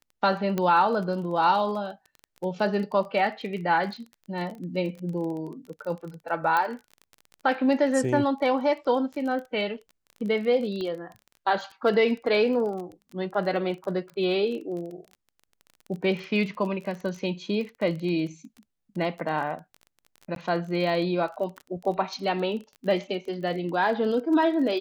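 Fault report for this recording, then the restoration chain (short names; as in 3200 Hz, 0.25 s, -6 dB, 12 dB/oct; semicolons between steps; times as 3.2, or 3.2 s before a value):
crackle 23/s -34 dBFS
0.58 pop -14 dBFS
6.57 pop -13 dBFS
10.81 pop -23 dBFS
20.35–20.36 gap 12 ms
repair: de-click; interpolate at 20.35, 12 ms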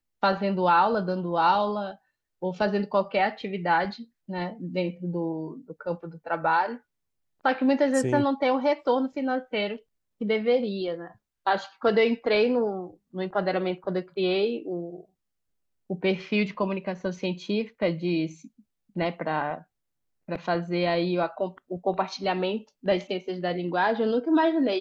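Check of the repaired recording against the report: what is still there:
6.57 pop
10.81 pop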